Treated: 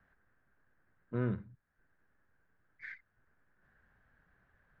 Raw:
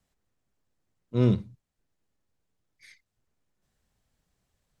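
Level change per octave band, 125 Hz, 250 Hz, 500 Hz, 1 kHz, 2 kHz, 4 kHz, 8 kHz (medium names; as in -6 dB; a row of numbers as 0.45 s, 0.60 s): -11.5 dB, -11.5 dB, -10.5 dB, -5.5 dB, +3.5 dB, under -20 dB, no reading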